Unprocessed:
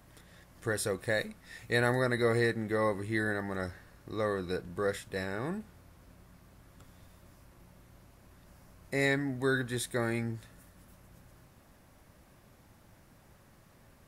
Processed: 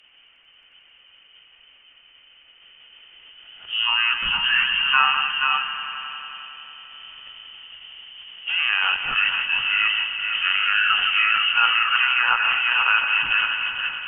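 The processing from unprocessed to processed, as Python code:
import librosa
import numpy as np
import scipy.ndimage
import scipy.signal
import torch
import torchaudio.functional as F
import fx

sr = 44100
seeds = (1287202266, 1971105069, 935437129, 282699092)

p1 = x[::-1].copy()
p2 = p1 + fx.echo_multitap(p1, sr, ms=(159, 477), db=(-11.5, -10.0), dry=0)
p3 = fx.freq_invert(p2, sr, carrier_hz=3400)
p4 = fx.over_compress(p3, sr, threshold_db=-36.0, ratio=-1.0)
p5 = p3 + (p4 * 10.0 ** (-2.0 / 20.0))
p6 = fx.peak_eq(p5, sr, hz=89.0, db=-14.5, octaves=0.23)
p7 = fx.echo_swell(p6, sr, ms=90, loudest=5, wet_db=-15.5)
p8 = fx.formant_shift(p7, sr, semitones=-2)
p9 = fx.env_lowpass_down(p8, sr, base_hz=1800.0, full_db=-20.0)
p10 = fx.dynamic_eq(p9, sr, hz=1100.0, q=1.6, threshold_db=-45.0, ratio=4.0, max_db=5)
p11 = fx.band_widen(p10, sr, depth_pct=40)
y = p11 * 10.0 ** (7.5 / 20.0)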